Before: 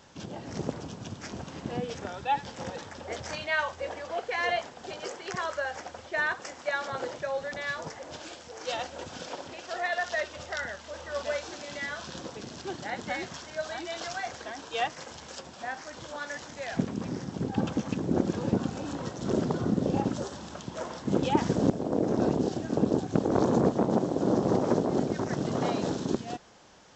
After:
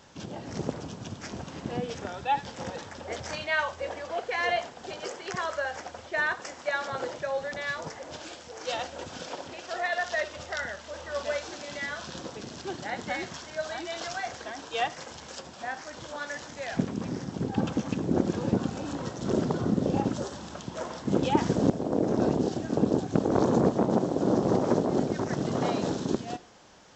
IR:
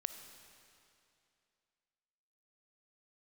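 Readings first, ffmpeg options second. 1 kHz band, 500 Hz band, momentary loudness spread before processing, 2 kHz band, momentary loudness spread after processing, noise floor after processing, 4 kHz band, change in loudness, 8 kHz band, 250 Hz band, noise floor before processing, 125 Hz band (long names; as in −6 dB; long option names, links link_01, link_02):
+1.0 dB, +1.0 dB, 13 LU, +1.0 dB, 13 LU, −46 dBFS, +1.0 dB, +1.0 dB, +1.0 dB, +1.0 dB, −47 dBFS, +1.0 dB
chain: -filter_complex "[0:a]asplit=2[link_01][link_02];[1:a]atrim=start_sample=2205,atrim=end_sample=4410[link_03];[link_02][link_03]afir=irnorm=-1:irlink=0,volume=6dB[link_04];[link_01][link_04]amix=inputs=2:normalize=0,volume=-7.5dB"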